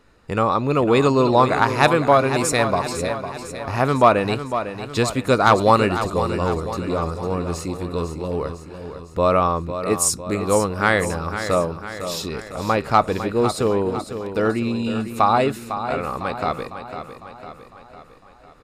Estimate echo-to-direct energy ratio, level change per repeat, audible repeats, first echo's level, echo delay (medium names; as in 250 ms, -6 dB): -8.5 dB, -5.5 dB, 5, -10.0 dB, 503 ms